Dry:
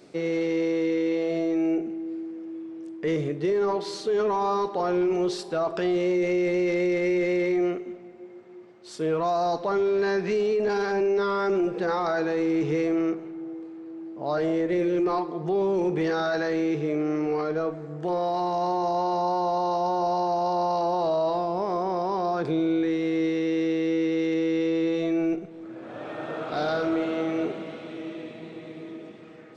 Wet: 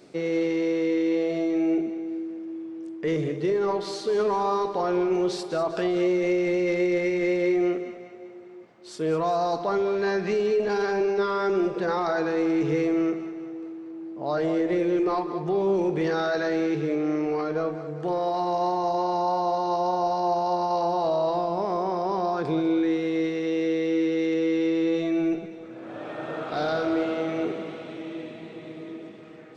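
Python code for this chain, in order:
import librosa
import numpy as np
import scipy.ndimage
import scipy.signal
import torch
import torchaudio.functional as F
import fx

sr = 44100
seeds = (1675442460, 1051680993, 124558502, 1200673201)

y = fx.echo_split(x, sr, split_hz=390.0, low_ms=81, high_ms=198, feedback_pct=52, wet_db=-11.5)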